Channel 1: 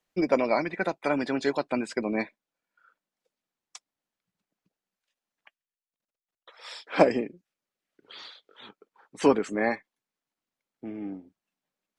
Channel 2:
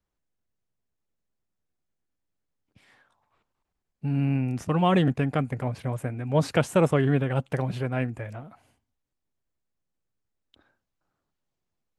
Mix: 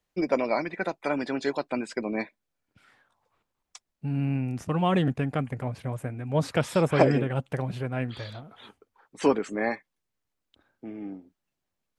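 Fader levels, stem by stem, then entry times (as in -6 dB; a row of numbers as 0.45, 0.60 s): -1.5, -2.5 dB; 0.00, 0.00 s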